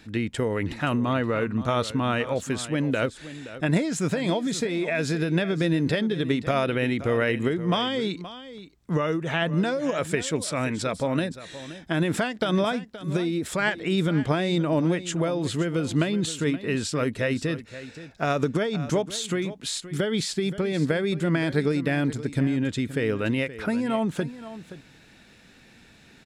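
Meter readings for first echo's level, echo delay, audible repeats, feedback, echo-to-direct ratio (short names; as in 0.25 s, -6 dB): -14.5 dB, 0.523 s, 1, no steady repeat, -14.5 dB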